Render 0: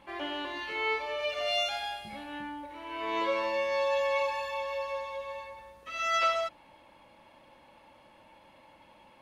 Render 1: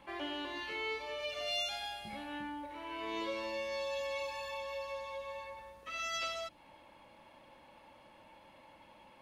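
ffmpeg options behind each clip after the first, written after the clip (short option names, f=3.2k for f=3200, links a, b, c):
-filter_complex "[0:a]acrossover=split=380|3000[a][b][c];[b]acompressor=threshold=-40dB:ratio=6[d];[a][d][c]amix=inputs=3:normalize=0,volume=-1.5dB"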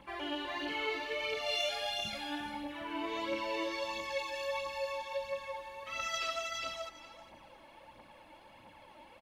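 -filter_complex "[0:a]asplit=2[a][b];[b]aecho=0:1:407|814|1221:0.708|0.113|0.0181[c];[a][c]amix=inputs=2:normalize=0,aphaser=in_gain=1:out_gain=1:delay=3.5:decay=0.49:speed=1.5:type=triangular"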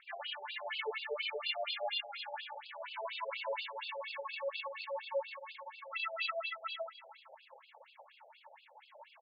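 -af "acrusher=bits=2:mode=log:mix=0:aa=0.000001,afftfilt=real='re*between(b*sr/1024,570*pow(3600/570,0.5+0.5*sin(2*PI*4.2*pts/sr))/1.41,570*pow(3600/570,0.5+0.5*sin(2*PI*4.2*pts/sr))*1.41)':imag='im*between(b*sr/1024,570*pow(3600/570,0.5+0.5*sin(2*PI*4.2*pts/sr))/1.41,570*pow(3600/570,0.5+0.5*sin(2*PI*4.2*pts/sr))*1.41)':win_size=1024:overlap=0.75,volume=3dB"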